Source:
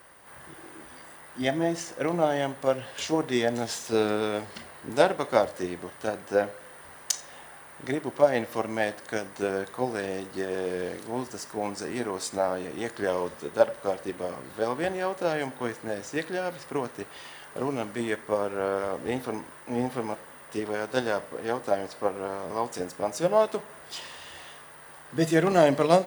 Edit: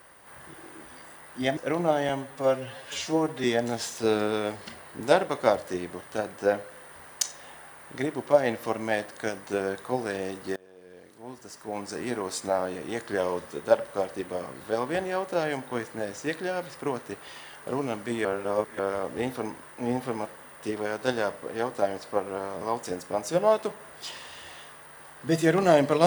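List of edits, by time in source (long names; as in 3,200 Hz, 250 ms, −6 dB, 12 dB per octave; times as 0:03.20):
0:01.57–0:01.91: remove
0:02.43–0:03.33: time-stretch 1.5×
0:10.45–0:11.90: fade in quadratic, from −23.5 dB
0:18.14–0:18.68: reverse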